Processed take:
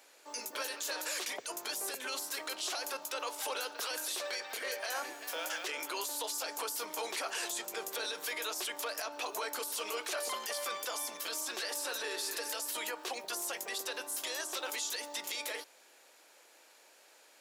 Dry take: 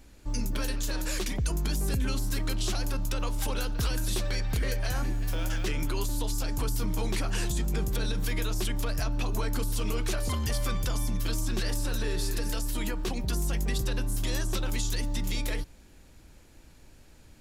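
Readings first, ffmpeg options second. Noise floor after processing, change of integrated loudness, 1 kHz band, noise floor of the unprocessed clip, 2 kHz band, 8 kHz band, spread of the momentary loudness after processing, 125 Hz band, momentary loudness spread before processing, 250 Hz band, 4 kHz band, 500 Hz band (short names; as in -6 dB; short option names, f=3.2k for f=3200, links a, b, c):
-62 dBFS, -5.5 dB, 0.0 dB, -53 dBFS, -0.5 dB, -0.5 dB, 2 LU, under -40 dB, 2 LU, -17.5 dB, -1.0 dB, -3.5 dB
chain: -af "highpass=f=490:w=0.5412,highpass=f=490:w=1.3066,alimiter=level_in=5dB:limit=-24dB:level=0:latency=1:release=13,volume=-5dB,volume=1.5dB"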